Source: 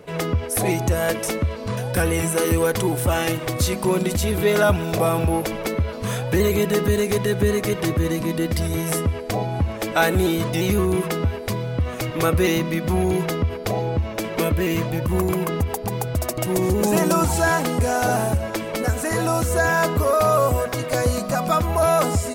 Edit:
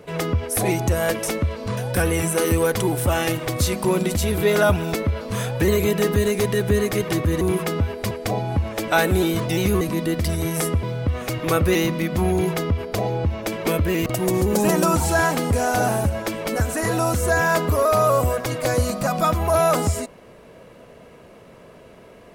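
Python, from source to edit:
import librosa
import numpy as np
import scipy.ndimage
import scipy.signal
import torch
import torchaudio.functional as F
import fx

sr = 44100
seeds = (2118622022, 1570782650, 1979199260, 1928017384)

y = fx.edit(x, sr, fx.cut(start_s=4.94, length_s=0.72),
    fx.swap(start_s=8.13, length_s=1.02, other_s=10.85, other_length_s=0.7),
    fx.cut(start_s=14.78, length_s=1.56), tone=tone)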